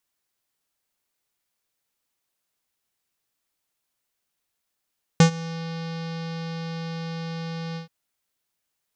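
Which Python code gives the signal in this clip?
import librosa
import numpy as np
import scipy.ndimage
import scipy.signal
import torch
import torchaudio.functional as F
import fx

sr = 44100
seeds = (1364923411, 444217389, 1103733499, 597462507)

y = fx.sub_voice(sr, note=52, wave='square', cutoff_hz=4900.0, q=2.2, env_oct=0.5, env_s=0.42, attack_ms=2.4, decay_s=0.1, sustain_db=-21.0, release_s=0.12, note_s=2.56, slope=24)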